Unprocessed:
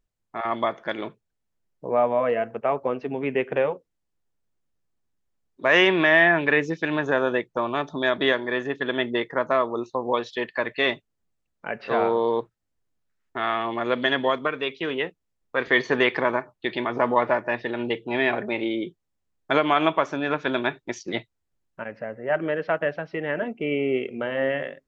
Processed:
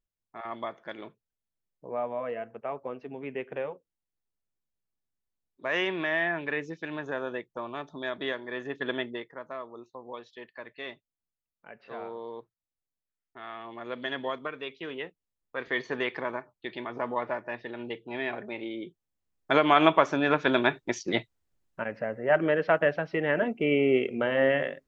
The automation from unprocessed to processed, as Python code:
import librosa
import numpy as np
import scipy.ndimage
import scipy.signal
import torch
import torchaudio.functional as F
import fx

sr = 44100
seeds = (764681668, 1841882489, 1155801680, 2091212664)

y = fx.gain(x, sr, db=fx.line((8.46, -11.0), (8.9, -4.5), (9.35, -17.0), (13.41, -17.0), (14.21, -10.0), (18.73, -10.0), (19.83, 1.0)))